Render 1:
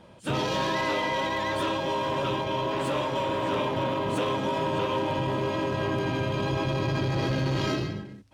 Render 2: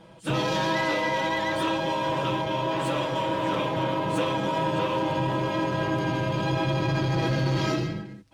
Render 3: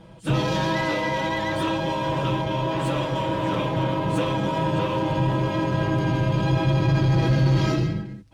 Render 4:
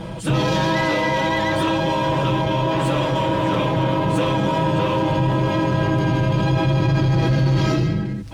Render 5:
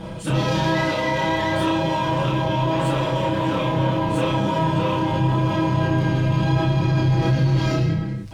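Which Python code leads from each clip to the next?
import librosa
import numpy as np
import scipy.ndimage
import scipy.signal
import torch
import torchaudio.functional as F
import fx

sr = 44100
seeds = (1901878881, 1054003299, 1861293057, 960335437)

y1 = x + 0.6 * np.pad(x, (int(6.1 * sr / 1000.0), 0))[:len(x)]
y2 = fx.low_shelf(y1, sr, hz=160.0, db=12.0)
y3 = fx.env_flatten(y2, sr, amount_pct=50)
y3 = y3 * 10.0 ** (1.0 / 20.0)
y4 = fx.doubler(y3, sr, ms=31.0, db=-2.5)
y4 = y4 * 10.0 ** (-4.0 / 20.0)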